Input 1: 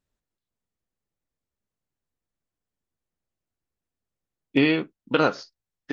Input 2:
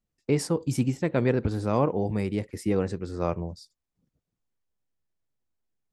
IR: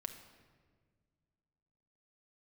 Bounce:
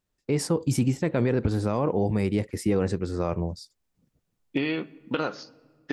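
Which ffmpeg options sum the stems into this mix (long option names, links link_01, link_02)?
-filter_complex "[0:a]acompressor=threshold=-25dB:ratio=6,volume=-0.5dB,asplit=2[link_01][link_02];[link_02]volume=-9.5dB[link_03];[1:a]dynaudnorm=framelen=260:gausssize=3:maxgain=9.5dB,volume=-4dB[link_04];[2:a]atrim=start_sample=2205[link_05];[link_03][link_05]afir=irnorm=-1:irlink=0[link_06];[link_01][link_04][link_06]amix=inputs=3:normalize=0,alimiter=limit=-14dB:level=0:latency=1:release=22"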